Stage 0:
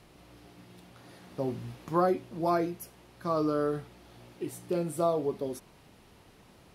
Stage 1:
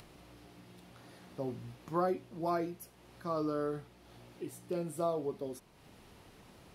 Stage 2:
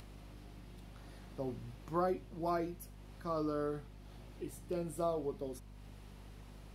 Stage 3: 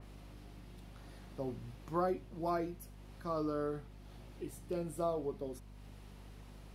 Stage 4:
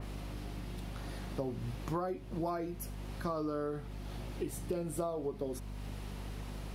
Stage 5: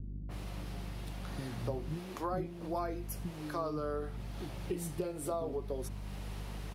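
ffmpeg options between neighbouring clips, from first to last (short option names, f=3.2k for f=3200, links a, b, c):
-af "acompressor=mode=upward:threshold=-43dB:ratio=2.5,volume=-6dB"
-af "aeval=exprs='val(0)+0.00316*(sin(2*PI*50*n/s)+sin(2*PI*2*50*n/s)/2+sin(2*PI*3*50*n/s)/3+sin(2*PI*4*50*n/s)/4+sin(2*PI*5*50*n/s)/5)':c=same,volume=-2dB"
-af "adynamicequalizer=threshold=0.00158:dfrequency=2500:dqfactor=0.7:tfrequency=2500:tqfactor=0.7:attack=5:release=100:ratio=0.375:range=1.5:mode=cutabove:tftype=highshelf"
-af "acompressor=threshold=-43dB:ratio=10,volume=10.5dB"
-filter_complex "[0:a]acrossover=split=290[a][b];[b]adelay=290[c];[a][c]amix=inputs=2:normalize=0,volume=1dB"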